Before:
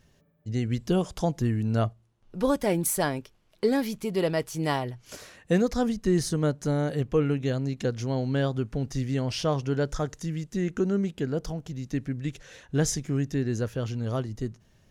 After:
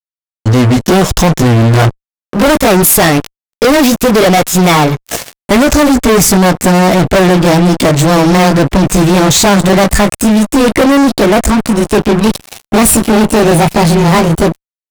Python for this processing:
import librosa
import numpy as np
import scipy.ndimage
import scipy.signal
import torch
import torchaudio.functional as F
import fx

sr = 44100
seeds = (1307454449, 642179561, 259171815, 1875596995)

y = fx.pitch_glide(x, sr, semitones=8.0, runs='starting unshifted')
y = fx.fuzz(y, sr, gain_db=39.0, gate_db=-44.0)
y = F.gain(torch.from_numpy(y), 8.0).numpy()